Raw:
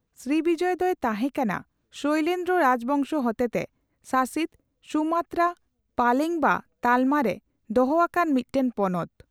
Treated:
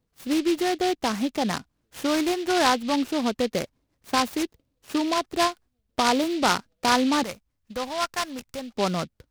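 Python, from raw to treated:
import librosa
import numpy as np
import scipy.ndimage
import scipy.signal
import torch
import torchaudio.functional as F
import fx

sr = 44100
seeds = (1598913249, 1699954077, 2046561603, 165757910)

y = fx.peak_eq(x, sr, hz=320.0, db=-15.0, octaves=2.1, at=(7.23, 8.74))
y = fx.noise_mod_delay(y, sr, seeds[0], noise_hz=3200.0, depth_ms=0.078)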